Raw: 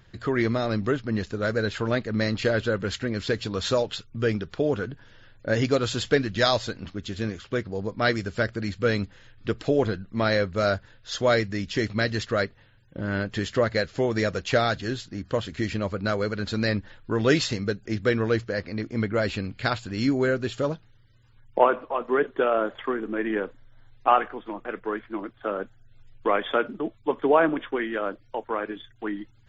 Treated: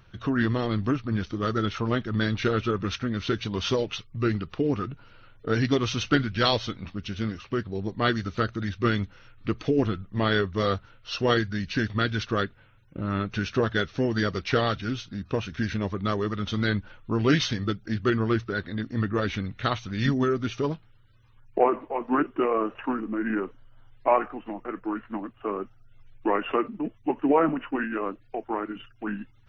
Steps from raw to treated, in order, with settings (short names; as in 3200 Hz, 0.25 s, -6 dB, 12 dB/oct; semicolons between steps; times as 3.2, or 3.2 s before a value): formant shift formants -3 st; dynamic EQ 540 Hz, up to -4 dB, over -40 dBFS, Q 3.3